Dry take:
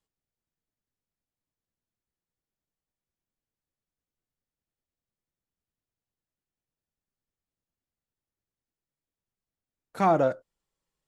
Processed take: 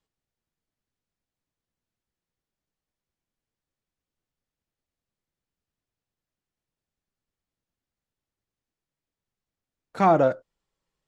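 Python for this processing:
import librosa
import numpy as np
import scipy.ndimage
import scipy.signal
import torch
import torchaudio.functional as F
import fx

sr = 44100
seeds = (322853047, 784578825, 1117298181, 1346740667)

y = scipy.signal.sosfilt(scipy.signal.bessel(2, 6200.0, 'lowpass', norm='mag', fs=sr, output='sos'), x)
y = y * librosa.db_to_amplitude(3.5)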